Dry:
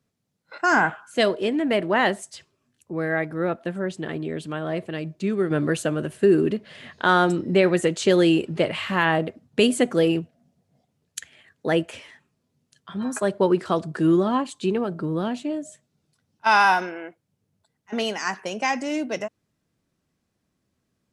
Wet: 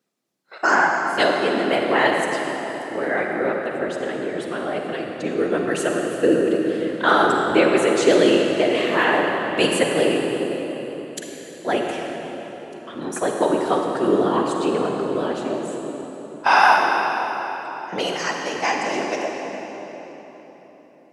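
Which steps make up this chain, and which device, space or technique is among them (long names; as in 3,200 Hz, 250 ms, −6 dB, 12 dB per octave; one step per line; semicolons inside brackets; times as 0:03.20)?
whispering ghost (random phases in short frames; high-pass filter 300 Hz 12 dB per octave; convolution reverb RT60 4.2 s, pre-delay 39 ms, DRR 1 dB)
level +1.5 dB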